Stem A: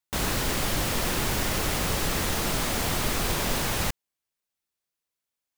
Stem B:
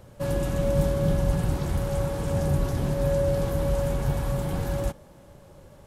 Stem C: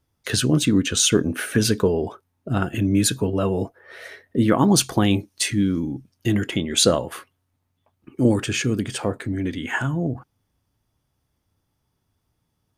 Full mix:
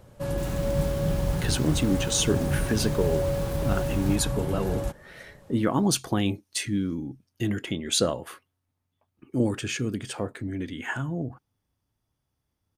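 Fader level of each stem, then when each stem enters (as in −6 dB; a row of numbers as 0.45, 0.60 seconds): −16.0, −2.5, −6.5 decibels; 0.25, 0.00, 1.15 seconds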